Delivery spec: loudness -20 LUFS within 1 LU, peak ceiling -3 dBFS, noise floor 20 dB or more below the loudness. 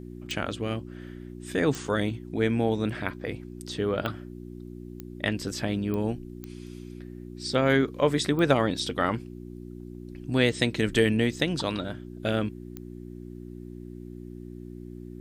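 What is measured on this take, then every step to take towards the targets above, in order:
clicks found 8; hum 60 Hz; highest harmonic 360 Hz; hum level -38 dBFS; loudness -27.5 LUFS; peak level -8.5 dBFS; loudness target -20.0 LUFS
-> de-click; de-hum 60 Hz, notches 6; trim +7.5 dB; peak limiter -3 dBFS

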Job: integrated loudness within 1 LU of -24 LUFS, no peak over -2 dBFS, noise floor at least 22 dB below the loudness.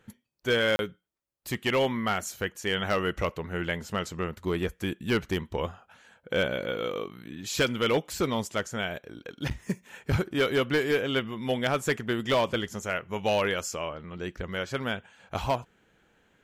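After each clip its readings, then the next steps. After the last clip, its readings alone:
clipped samples 0.7%; clipping level -18.0 dBFS; dropouts 1; longest dropout 31 ms; loudness -29.5 LUFS; peak level -18.0 dBFS; loudness target -24.0 LUFS
-> clip repair -18 dBFS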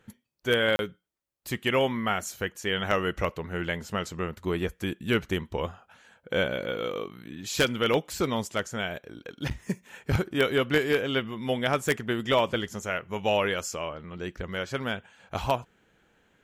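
clipped samples 0.0%; dropouts 1; longest dropout 31 ms
-> interpolate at 0.76 s, 31 ms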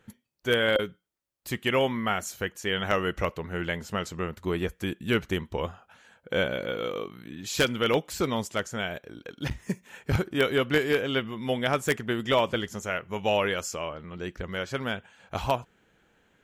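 dropouts 0; loudness -29.0 LUFS; peak level -9.0 dBFS; loudness target -24.0 LUFS
-> trim +5 dB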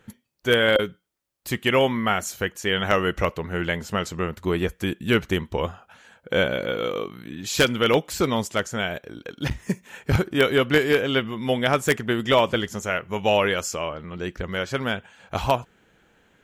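loudness -24.0 LUFS; peak level -4.0 dBFS; noise floor -66 dBFS

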